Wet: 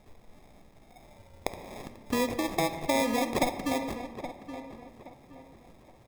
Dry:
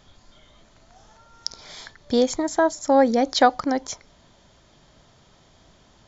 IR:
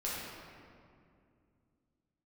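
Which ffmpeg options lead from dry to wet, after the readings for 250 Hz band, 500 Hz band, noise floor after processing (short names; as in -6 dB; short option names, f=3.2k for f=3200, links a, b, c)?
-7.5 dB, -10.0 dB, -57 dBFS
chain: -filter_complex "[0:a]acompressor=threshold=-25dB:ratio=2.5,acrusher=samples=30:mix=1:aa=0.000001,asplit=2[a][b];[b]adelay=822,lowpass=f=2.5k:p=1,volume=-11dB,asplit=2[c][d];[d]adelay=822,lowpass=f=2.5k:p=1,volume=0.33,asplit=2[e][f];[f]adelay=822,lowpass=f=2.5k:p=1,volume=0.33,asplit=2[g][h];[h]adelay=822,lowpass=f=2.5k:p=1,volume=0.33[i];[a][c][e][g][i]amix=inputs=5:normalize=0,asplit=2[j][k];[1:a]atrim=start_sample=2205,afade=t=out:st=0.34:d=0.01,atrim=end_sample=15435,asetrate=48510,aresample=44100[l];[k][l]afir=irnorm=-1:irlink=0,volume=-10dB[m];[j][m]amix=inputs=2:normalize=0,volume=-4dB"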